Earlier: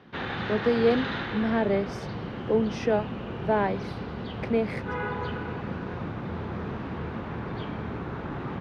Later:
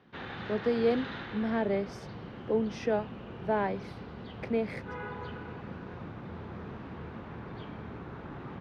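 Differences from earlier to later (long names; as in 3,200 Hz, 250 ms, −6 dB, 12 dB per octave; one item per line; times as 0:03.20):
speech −4.5 dB
background −8.5 dB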